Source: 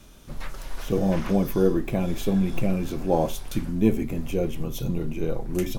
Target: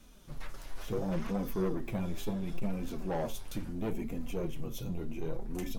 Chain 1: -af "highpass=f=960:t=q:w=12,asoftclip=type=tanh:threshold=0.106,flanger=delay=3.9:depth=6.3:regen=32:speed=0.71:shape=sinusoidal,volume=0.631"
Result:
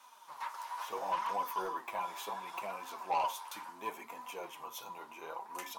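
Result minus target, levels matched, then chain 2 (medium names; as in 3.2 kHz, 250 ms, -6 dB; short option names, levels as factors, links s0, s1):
1 kHz band +13.5 dB
-af "asoftclip=type=tanh:threshold=0.106,flanger=delay=3.9:depth=6.3:regen=32:speed=0.71:shape=sinusoidal,volume=0.631"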